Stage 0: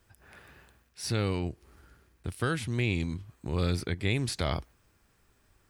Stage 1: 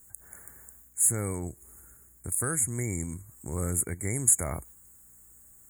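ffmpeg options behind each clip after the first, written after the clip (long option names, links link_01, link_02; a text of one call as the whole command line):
ffmpeg -i in.wav -af "aeval=exprs='val(0)+0.000562*(sin(2*PI*60*n/s)+sin(2*PI*2*60*n/s)/2+sin(2*PI*3*60*n/s)/3+sin(2*PI*4*60*n/s)/4+sin(2*PI*5*60*n/s)/5)':channel_layout=same,afftfilt=real='re*(1-between(b*sr/4096,2300,6600))':imag='im*(1-between(b*sr/4096,2300,6600))':win_size=4096:overlap=0.75,aexciter=amount=7.3:drive=8.1:freq=3300,volume=-3dB" out.wav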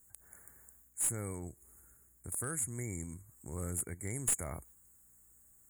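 ffmpeg -i in.wav -af "aeval=exprs='clip(val(0),-1,0.106)':channel_layout=same,volume=-8.5dB" out.wav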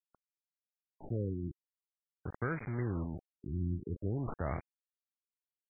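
ffmpeg -i in.wav -af "aresample=11025,acrusher=bits=7:mix=0:aa=0.000001,aresample=44100,afftfilt=real='re*lt(b*sr/1024,350*pow(2500/350,0.5+0.5*sin(2*PI*0.48*pts/sr)))':imag='im*lt(b*sr/1024,350*pow(2500/350,0.5+0.5*sin(2*PI*0.48*pts/sr)))':win_size=1024:overlap=0.75,volume=5.5dB" out.wav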